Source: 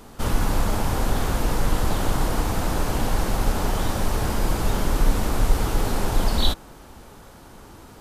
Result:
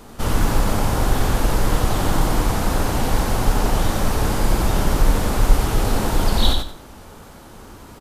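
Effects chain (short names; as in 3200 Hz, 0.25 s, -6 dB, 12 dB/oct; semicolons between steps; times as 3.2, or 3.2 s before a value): wow and flutter 24 cents; feedback echo 91 ms, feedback 25%, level -4.5 dB; gain +2.5 dB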